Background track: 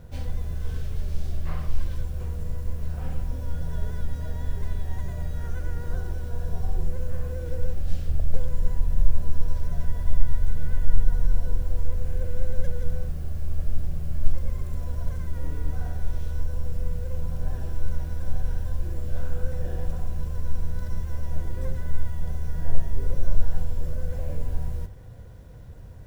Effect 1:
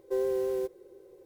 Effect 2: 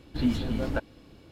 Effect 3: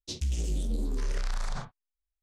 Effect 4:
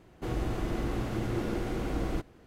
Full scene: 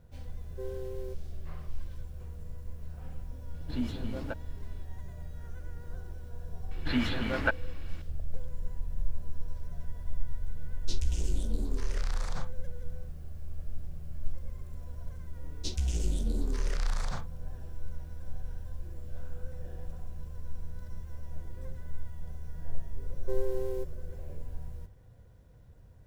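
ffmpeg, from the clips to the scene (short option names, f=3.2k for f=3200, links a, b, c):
-filter_complex "[1:a]asplit=2[a][b];[2:a]asplit=2[c][d];[3:a]asplit=2[e][f];[0:a]volume=-12dB[g];[d]equalizer=f=1.8k:t=o:w=2.1:g=15[h];[a]atrim=end=1.25,asetpts=PTS-STARTPTS,volume=-11.5dB,afade=t=in:d=0.004:c=hsin,afade=t=out:st=1.246:d=0.004:c=hsin,adelay=470[i];[c]atrim=end=1.31,asetpts=PTS-STARTPTS,volume=-8dB,afade=t=in:d=0.004:c=hsin,afade=t=out:st=1.306:d=0.004:c=hsin,adelay=3540[j];[h]atrim=end=1.31,asetpts=PTS-STARTPTS,volume=-5dB,afade=t=in:d=0.004:c=hsin,afade=t=out:st=1.306:d=0.004:c=hsin,adelay=6710[k];[e]atrim=end=2.22,asetpts=PTS-STARTPTS,volume=-2.5dB,afade=t=in:d=0.004:c=hsin,afade=t=out:st=2.216:d=0.004:c=hsin,adelay=10800[l];[f]atrim=end=2.22,asetpts=PTS-STARTPTS,volume=-0.5dB,afade=t=in:d=0.004:c=hsin,afade=t=out:st=2.216:d=0.004:c=hsin,adelay=686196S[m];[b]atrim=end=1.25,asetpts=PTS-STARTPTS,volume=-5.5dB,afade=t=in:d=0.004:c=hsin,afade=t=out:st=1.246:d=0.004:c=hsin,adelay=23170[n];[g][i][j][k][l][m][n]amix=inputs=7:normalize=0"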